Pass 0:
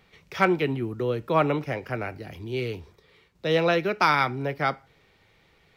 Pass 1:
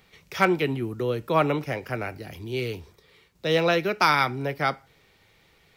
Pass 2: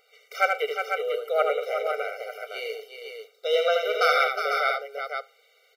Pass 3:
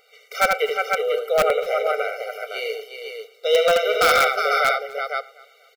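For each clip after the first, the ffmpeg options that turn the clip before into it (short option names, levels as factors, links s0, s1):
-af "highshelf=f=5500:g=9.5"
-af "aecho=1:1:78|118|362|497:0.562|0.106|0.422|0.501,afftfilt=real='re*eq(mod(floor(b*sr/1024/390),2),1)':imag='im*eq(mod(floor(b*sr/1024/390),2),1)':win_size=1024:overlap=0.75"
-filter_complex "[0:a]asplit=2[s0][s1];[s1]aeval=exprs='(mod(5.01*val(0)+1,2)-1)/5.01':c=same,volume=0.501[s2];[s0][s2]amix=inputs=2:normalize=0,aecho=1:1:244|488:0.0794|0.0278,volume=1.26"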